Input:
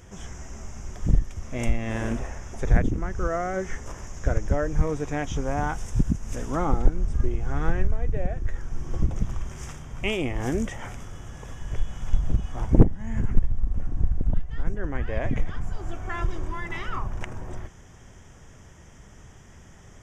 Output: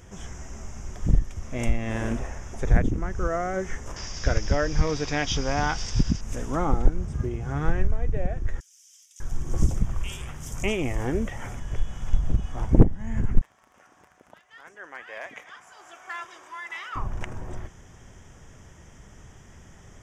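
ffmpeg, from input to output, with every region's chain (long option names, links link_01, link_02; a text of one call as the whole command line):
ffmpeg -i in.wav -filter_complex "[0:a]asettb=1/sr,asplit=3[link_01][link_02][link_03];[link_01]atrim=end=3.964[link_04];[link_02]atrim=start=3.96:end=6.21,asetpts=PTS-STARTPTS,afade=type=in:duration=0.004:curve=qsin,afade=type=out:start_time=2.246:duration=0.004:curve=qsin,lowpass=frequency=4800:width_type=q:width=6.1,equalizer=frequency=3700:width_type=o:width=2.6:gain=7.5[link_05];[link_03]atrim=start=6.206[link_06];[link_04][link_05]acrossfade=duration=0.004:curve1=hsin:curve2=qsin[link_07];[link_07][link_06]acrossfade=duration=0.004:curve1=qsin:curve2=hsin,asettb=1/sr,asplit=3[link_08][link_09][link_10];[link_08]atrim=end=7.014[link_11];[link_09]atrim=start=7.01:end=7.65,asetpts=PTS-STARTPTS,afade=type=in:duration=0.004:curve=qsin,afade=type=out:start_time=0.636:duration=0.004:curve=qsin,highpass=69,equalizer=frequency=140:width_type=o:width=0.92:gain=5[link_12];[link_10]atrim=start=7.646[link_13];[link_11][link_12]acrossfade=duration=0.004:curve1=hsin:curve2=qsin[link_14];[link_14][link_13]acrossfade=duration=0.004:curve1=qsin:curve2=hsin,asettb=1/sr,asplit=3[link_15][link_16][link_17];[link_15]atrim=end=8.604[link_18];[link_16]atrim=start=8.6:end=11.6,asetpts=PTS-STARTPTS,afade=type=in:duration=0.004:curve=qsin,afade=type=out:start_time=2.996:duration=0.004:curve=qsin,highshelf=frequency=6300:gain=7,acrossover=split=3400[link_19][link_20];[link_19]adelay=600[link_21];[link_21][link_20]amix=inputs=2:normalize=0,atrim=end_sample=132300,aphaser=in_gain=1:out_gain=1:delay=2.2:decay=0.22:speed=1:type=sinusoidal[link_22];[link_17]atrim=start=11.596[link_23];[link_18][link_22]acrossfade=duration=0.004:curve1=hsin:curve2=qsin[link_24];[link_24][link_23]acrossfade=duration=0.004:curve1=qsin:curve2=hsin,asettb=1/sr,asplit=3[link_25][link_26][link_27];[link_25]atrim=end=13.414[link_28];[link_26]atrim=start=13.41:end=16.96,asetpts=PTS-STARTPTS,afade=type=in:duration=0.004:curve=qsin,afade=type=out:start_time=3.546:duration=0.004:curve=qsin,highpass=960,asoftclip=type=hard:threshold=-27dB[link_29];[link_27]atrim=start=16.956[link_30];[link_28][link_29]acrossfade=duration=0.004:curve1=hsin:curve2=qsin[link_31];[link_31][link_30]acrossfade=duration=0.004:curve1=qsin:curve2=hsin" out.wav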